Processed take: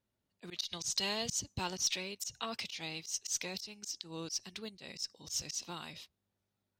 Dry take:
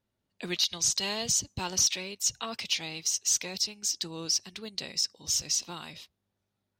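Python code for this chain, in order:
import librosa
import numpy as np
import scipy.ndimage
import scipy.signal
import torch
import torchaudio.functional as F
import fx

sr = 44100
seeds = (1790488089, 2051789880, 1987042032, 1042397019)

y = fx.cheby_harmonics(x, sr, harmonics=(2, 3), levels_db=(-32, -30), full_scale_db=-15.5)
y = fx.auto_swell(y, sr, attack_ms=129.0)
y = y * librosa.db_to_amplitude(-2.5)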